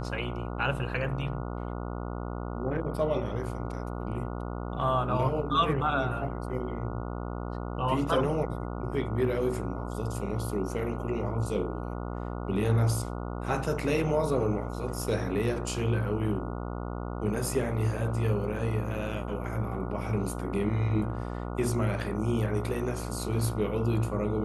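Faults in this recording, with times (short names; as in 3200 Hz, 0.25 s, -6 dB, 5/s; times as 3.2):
buzz 60 Hz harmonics 24 -35 dBFS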